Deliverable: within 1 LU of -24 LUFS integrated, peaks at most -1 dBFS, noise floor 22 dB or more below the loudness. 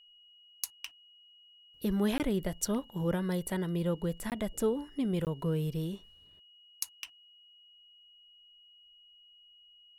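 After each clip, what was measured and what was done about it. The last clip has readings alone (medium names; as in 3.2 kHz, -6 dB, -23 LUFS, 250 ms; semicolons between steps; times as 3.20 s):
dropouts 3; longest dropout 18 ms; steady tone 2.9 kHz; tone level -57 dBFS; loudness -33.5 LUFS; peak level -13.5 dBFS; loudness target -24.0 LUFS
-> interpolate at 2.18/4.30/5.25 s, 18 ms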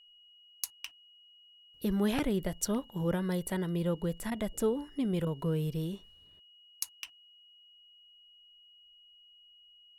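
dropouts 0; steady tone 2.9 kHz; tone level -57 dBFS
-> band-stop 2.9 kHz, Q 30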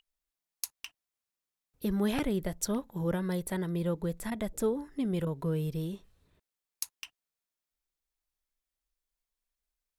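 steady tone not found; loudness -33.5 LUFS; peak level -13.5 dBFS; loudness target -24.0 LUFS
-> trim +9.5 dB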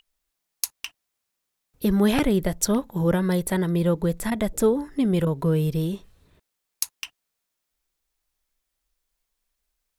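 loudness -24.0 LUFS; peak level -4.0 dBFS; noise floor -81 dBFS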